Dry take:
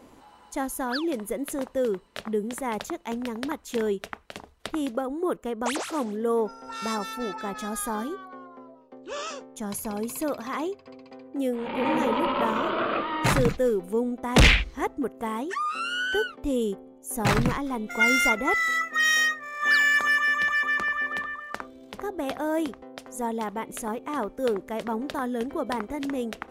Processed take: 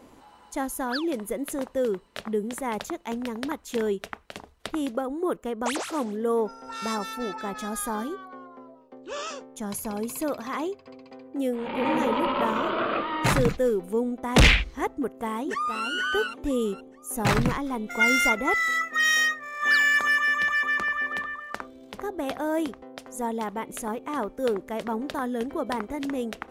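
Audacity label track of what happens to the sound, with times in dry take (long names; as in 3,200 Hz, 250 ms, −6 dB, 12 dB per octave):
14.980000	15.860000	delay throw 470 ms, feedback 30%, level −7 dB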